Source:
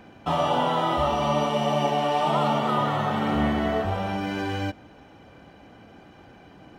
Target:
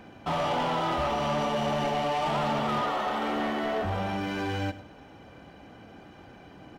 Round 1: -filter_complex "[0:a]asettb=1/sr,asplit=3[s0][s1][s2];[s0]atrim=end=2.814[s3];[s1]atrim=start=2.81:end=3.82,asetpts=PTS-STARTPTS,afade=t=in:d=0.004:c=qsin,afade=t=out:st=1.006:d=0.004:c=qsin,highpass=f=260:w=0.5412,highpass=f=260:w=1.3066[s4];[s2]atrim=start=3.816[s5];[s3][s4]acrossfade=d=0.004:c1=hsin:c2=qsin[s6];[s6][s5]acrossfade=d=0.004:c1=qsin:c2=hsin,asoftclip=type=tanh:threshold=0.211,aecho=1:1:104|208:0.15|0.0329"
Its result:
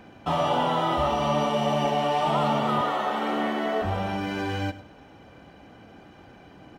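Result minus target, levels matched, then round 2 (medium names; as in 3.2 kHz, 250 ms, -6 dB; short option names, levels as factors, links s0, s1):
saturation: distortion -13 dB
-filter_complex "[0:a]asettb=1/sr,asplit=3[s0][s1][s2];[s0]atrim=end=2.814[s3];[s1]atrim=start=2.81:end=3.82,asetpts=PTS-STARTPTS,afade=t=in:d=0.004:c=qsin,afade=t=out:st=1.006:d=0.004:c=qsin,highpass=f=260:w=0.5412,highpass=f=260:w=1.3066[s4];[s2]atrim=start=3.816[s5];[s3][s4]acrossfade=d=0.004:c1=hsin:c2=qsin[s6];[s6][s5]acrossfade=d=0.004:c1=qsin:c2=hsin,asoftclip=type=tanh:threshold=0.0631,aecho=1:1:104|208:0.15|0.0329"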